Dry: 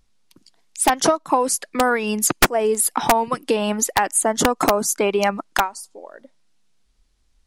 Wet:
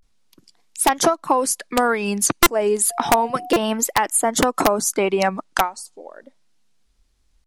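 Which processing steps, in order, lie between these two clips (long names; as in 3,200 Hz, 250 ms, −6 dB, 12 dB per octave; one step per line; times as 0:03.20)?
0:02.87–0:03.47: steady tone 710 Hz −31 dBFS
pitch vibrato 0.32 Hz 85 cents
buffer that repeats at 0:02.43/0:03.53, samples 128, times 10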